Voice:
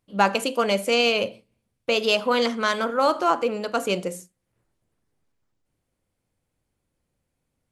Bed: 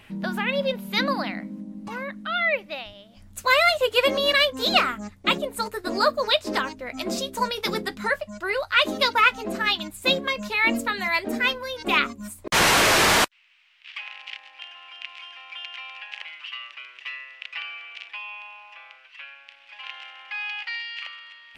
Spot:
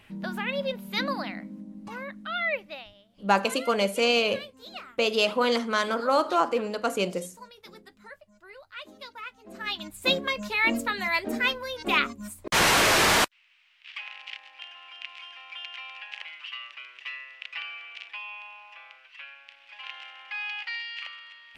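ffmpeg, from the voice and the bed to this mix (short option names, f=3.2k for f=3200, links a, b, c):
-filter_complex "[0:a]adelay=3100,volume=-2.5dB[a];[1:a]volume=14.5dB,afade=t=out:st=2.61:d=0.72:silence=0.141254,afade=t=in:st=9.43:d=0.64:silence=0.105925[b];[a][b]amix=inputs=2:normalize=0"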